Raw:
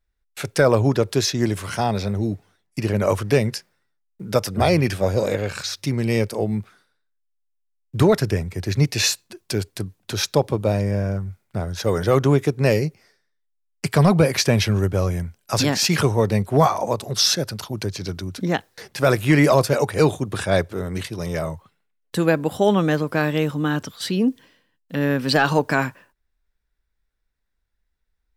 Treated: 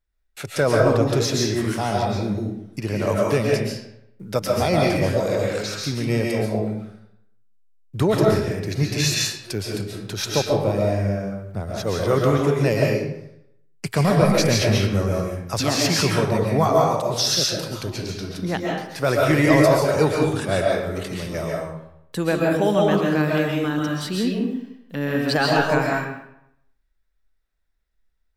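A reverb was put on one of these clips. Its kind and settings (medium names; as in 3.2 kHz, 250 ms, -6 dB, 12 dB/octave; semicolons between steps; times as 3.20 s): algorithmic reverb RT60 0.77 s, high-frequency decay 0.75×, pre-delay 95 ms, DRR -2.5 dB; trim -4 dB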